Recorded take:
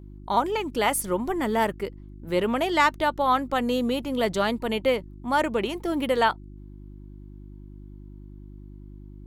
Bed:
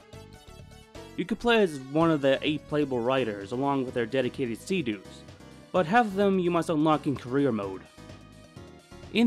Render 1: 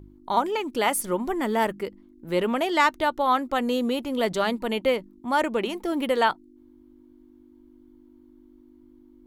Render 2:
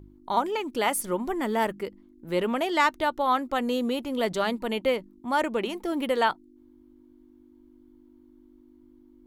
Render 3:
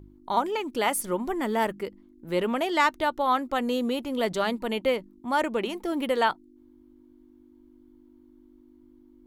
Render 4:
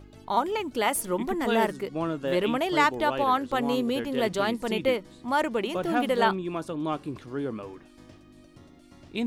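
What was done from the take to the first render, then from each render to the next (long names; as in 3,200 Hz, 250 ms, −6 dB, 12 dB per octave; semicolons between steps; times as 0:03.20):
hum removal 50 Hz, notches 4
level −2 dB
no processing that can be heard
mix in bed −6.5 dB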